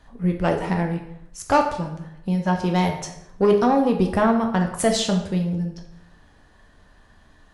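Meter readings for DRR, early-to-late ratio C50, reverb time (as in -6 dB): 2.5 dB, 7.5 dB, 0.80 s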